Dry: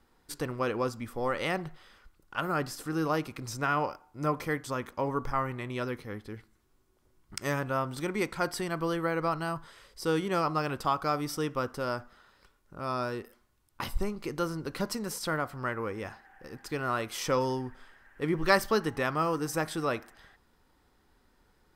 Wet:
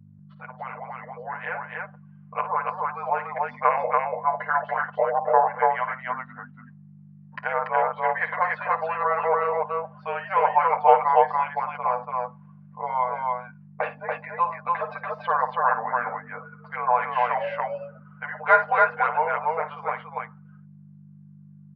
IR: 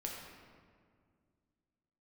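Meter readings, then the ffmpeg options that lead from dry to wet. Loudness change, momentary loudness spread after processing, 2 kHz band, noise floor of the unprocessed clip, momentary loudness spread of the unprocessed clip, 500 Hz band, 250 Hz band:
+7.0 dB, 16 LU, +7.5 dB, -68 dBFS, 11 LU, +5.0 dB, -12.0 dB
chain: -af "afftfilt=real='re*(1-between(b*sr/4096,110,790))':imag='im*(1-between(b*sr/4096,110,790))':win_size=4096:overlap=0.75,highpass=f=60:p=1,afftdn=nr=19:nf=-46,aecho=1:1:7.3:0.89,dynaudnorm=f=460:g=13:m=3.16,aeval=exprs='val(0)+0.01*(sin(2*PI*50*n/s)+sin(2*PI*2*50*n/s)/2+sin(2*PI*3*50*n/s)/3+sin(2*PI*4*50*n/s)/4+sin(2*PI*5*50*n/s)/5)':c=same,aecho=1:1:55.39|285.7:0.251|0.794,highpass=f=160:t=q:w=0.5412,highpass=f=160:t=q:w=1.307,lowpass=f=2600:t=q:w=0.5176,lowpass=f=2600:t=q:w=0.7071,lowpass=f=2600:t=q:w=1.932,afreqshift=-350"

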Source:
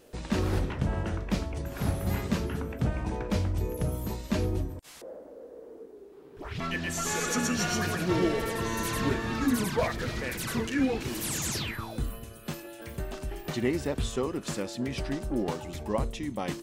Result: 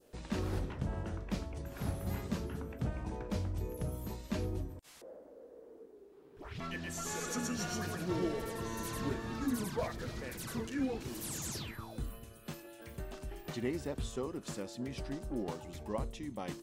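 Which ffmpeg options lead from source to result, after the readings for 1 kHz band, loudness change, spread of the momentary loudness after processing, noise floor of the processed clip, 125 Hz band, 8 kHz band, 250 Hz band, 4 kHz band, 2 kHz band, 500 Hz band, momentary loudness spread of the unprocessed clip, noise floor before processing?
-9.0 dB, -8.5 dB, 13 LU, -57 dBFS, -8.0 dB, -8.5 dB, -8.0 dB, -10.0 dB, -11.0 dB, -8.0 dB, 13 LU, -49 dBFS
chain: -af "adynamicequalizer=threshold=0.00398:dfrequency=2300:dqfactor=1:tfrequency=2300:tqfactor=1:attack=5:release=100:ratio=0.375:range=2.5:mode=cutabove:tftype=bell,volume=0.398"

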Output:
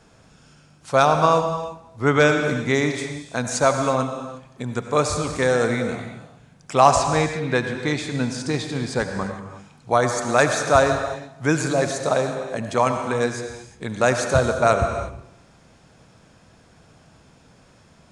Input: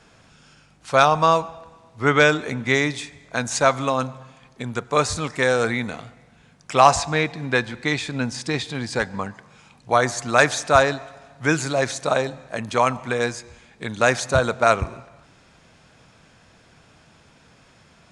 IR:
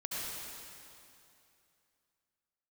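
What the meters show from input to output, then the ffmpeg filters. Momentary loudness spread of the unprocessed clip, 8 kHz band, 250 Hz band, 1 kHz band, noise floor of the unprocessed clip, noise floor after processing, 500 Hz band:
16 LU, 0.0 dB, +2.0 dB, -0.5 dB, -54 dBFS, -54 dBFS, +1.5 dB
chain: -filter_complex "[0:a]equalizer=f=2500:w=0.53:g=-6.5,asplit=2[s0][s1];[1:a]atrim=start_sample=2205,afade=t=out:st=0.42:d=0.01,atrim=end_sample=18963[s2];[s1][s2]afir=irnorm=-1:irlink=0,volume=0.562[s3];[s0][s3]amix=inputs=2:normalize=0,volume=0.891"

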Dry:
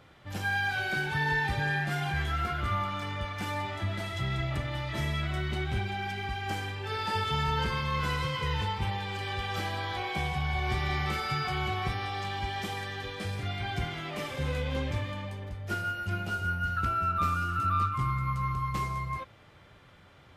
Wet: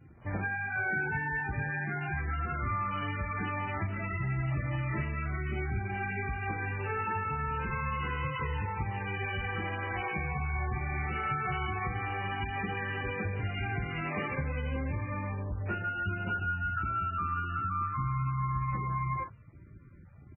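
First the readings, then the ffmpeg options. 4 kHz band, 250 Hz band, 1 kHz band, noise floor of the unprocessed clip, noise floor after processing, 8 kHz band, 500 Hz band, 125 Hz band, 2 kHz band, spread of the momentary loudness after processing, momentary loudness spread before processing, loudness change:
-12.5 dB, -1.0 dB, -2.5 dB, -55 dBFS, -52 dBFS, under -30 dB, -2.5 dB, -1.0 dB, -1.0 dB, 3 LU, 7 LU, -2.0 dB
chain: -filter_complex "[0:a]asplit=2[s0][s1];[s1]alimiter=level_in=1.06:limit=0.0631:level=0:latency=1:release=417,volume=0.944,volume=1.19[s2];[s0][s2]amix=inputs=2:normalize=0,adynamicequalizer=threshold=0.00447:dfrequency=630:dqfactor=2.5:tfrequency=630:tqfactor=2.5:attack=5:release=100:ratio=0.375:range=3:mode=cutabove:tftype=bell,acompressor=threshold=0.0355:ratio=10,aresample=8000,aresample=44100,asplit=2[s3][s4];[s4]aecho=0:1:37|53:0.299|0.211[s5];[s3][s5]amix=inputs=2:normalize=0,afwtdn=0.00794" -ar 16000 -c:a libmp3lame -b:a 8k

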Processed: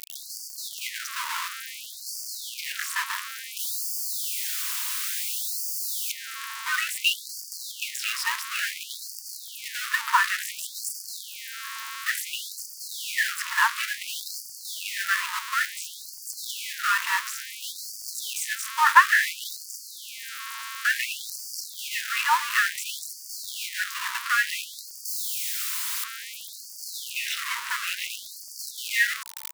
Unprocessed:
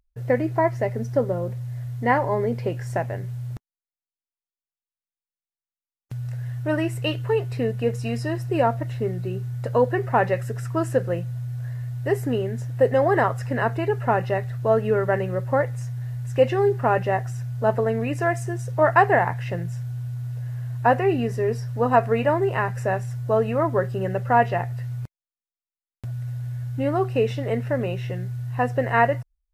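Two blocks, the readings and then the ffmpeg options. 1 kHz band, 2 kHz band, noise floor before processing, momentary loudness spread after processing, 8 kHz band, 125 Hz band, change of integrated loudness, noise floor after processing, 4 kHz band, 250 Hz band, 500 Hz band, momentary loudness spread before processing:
-4.5 dB, +4.5 dB, under -85 dBFS, 13 LU, no reading, under -40 dB, -3.5 dB, -42 dBFS, +13.0 dB, under -40 dB, under -40 dB, 11 LU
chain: -af "aeval=exprs='val(0)+0.5*0.0841*sgn(val(0))':c=same,afftfilt=real='re*gte(b*sr/1024,880*pow(4500/880,0.5+0.5*sin(2*PI*0.57*pts/sr)))':imag='im*gte(b*sr/1024,880*pow(4500/880,0.5+0.5*sin(2*PI*0.57*pts/sr)))':win_size=1024:overlap=0.75,volume=1.58"

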